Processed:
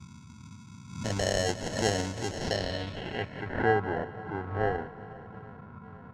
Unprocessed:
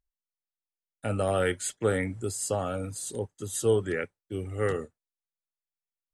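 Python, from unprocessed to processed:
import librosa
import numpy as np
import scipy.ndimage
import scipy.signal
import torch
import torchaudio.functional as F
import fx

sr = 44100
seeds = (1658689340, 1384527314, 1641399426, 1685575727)

p1 = fx.dmg_noise_band(x, sr, seeds[0], low_hz=78.0, high_hz=230.0, level_db=-46.0)
p2 = p1 + fx.echo_swing(p1, sr, ms=836, ratio=1.5, feedback_pct=54, wet_db=-20.5, dry=0)
p3 = fx.sample_hold(p2, sr, seeds[1], rate_hz=1200.0, jitter_pct=0)
p4 = fx.filter_sweep_lowpass(p3, sr, from_hz=6600.0, to_hz=1300.0, start_s=2.32, end_s=3.77, q=2.8)
p5 = fx.echo_feedback(p4, sr, ms=181, feedback_pct=58, wet_db=-17.0)
p6 = fx.pre_swell(p5, sr, db_per_s=89.0)
y = p6 * librosa.db_to_amplitude(-2.5)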